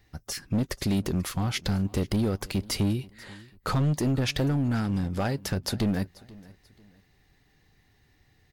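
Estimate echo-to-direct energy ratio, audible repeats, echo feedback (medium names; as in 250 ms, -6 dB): -21.5 dB, 2, 34%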